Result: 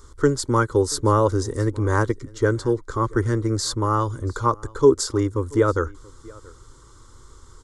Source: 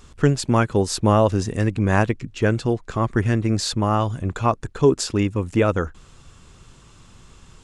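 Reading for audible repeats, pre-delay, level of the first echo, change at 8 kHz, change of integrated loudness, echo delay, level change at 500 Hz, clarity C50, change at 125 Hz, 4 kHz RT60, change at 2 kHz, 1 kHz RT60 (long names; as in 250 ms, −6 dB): 1, no reverb audible, −24.0 dB, +1.0 dB, −1.0 dB, 681 ms, +1.0 dB, no reverb audible, −2.5 dB, no reverb audible, −2.5 dB, no reverb audible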